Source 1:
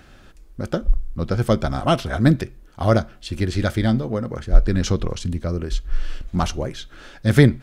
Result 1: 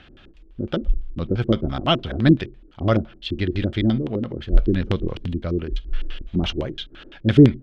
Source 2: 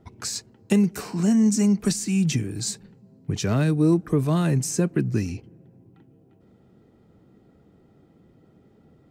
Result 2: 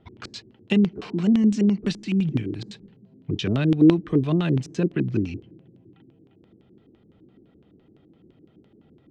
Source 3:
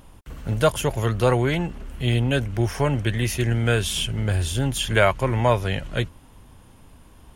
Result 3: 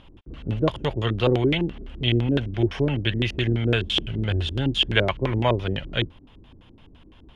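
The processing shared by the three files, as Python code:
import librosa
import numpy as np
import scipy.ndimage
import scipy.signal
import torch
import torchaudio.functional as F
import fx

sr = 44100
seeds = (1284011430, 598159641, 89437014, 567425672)

y = fx.filter_lfo_lowpass(x, sr, shape='square', hz=5.9, low_hz=340.0, high_hz=3200.0, q=3.3)
y = y * librosa.db_to_amplitude(-2.5)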